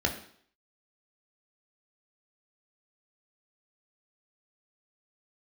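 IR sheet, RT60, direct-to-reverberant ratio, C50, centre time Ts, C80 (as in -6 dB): 0.60 s, 1.5 dB, 9.5 dB, 17 ms, 12.5 dB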